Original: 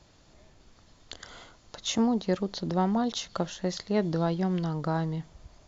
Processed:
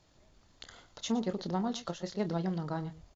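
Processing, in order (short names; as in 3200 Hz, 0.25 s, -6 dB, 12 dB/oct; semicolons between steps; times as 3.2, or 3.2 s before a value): tapped delay 53/205 ms -11.5/-16 dB; tempo 1.8×; gain -6 dB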